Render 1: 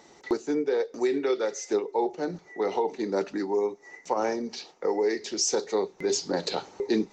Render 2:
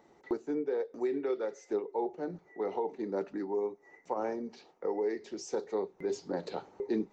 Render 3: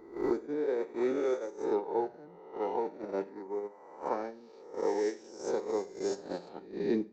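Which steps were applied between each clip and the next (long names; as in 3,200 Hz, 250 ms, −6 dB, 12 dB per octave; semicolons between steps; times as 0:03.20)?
parametric band 5,700 Hz −14 dB 2.4 octaves; level −6 dB
peak hold with a rise ahead of every peak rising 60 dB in 2.10 s; noise gate −29 dBFS, range −17 dB; four-comb reverb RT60 0.38 s, combs from 31 ms, DRR 15.5 dB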